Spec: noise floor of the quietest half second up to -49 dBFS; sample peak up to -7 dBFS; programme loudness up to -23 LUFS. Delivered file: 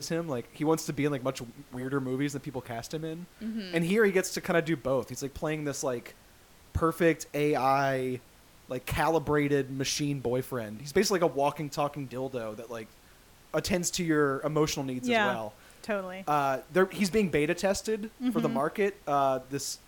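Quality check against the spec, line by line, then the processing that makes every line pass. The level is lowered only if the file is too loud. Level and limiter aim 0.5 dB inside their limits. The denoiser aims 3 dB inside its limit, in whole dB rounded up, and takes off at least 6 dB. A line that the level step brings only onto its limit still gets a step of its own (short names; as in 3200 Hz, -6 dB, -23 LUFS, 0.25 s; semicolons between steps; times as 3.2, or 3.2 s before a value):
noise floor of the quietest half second -56 dBFS: OK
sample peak -13.5 dBFS: OK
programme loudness -29.5 LUFS: OK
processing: none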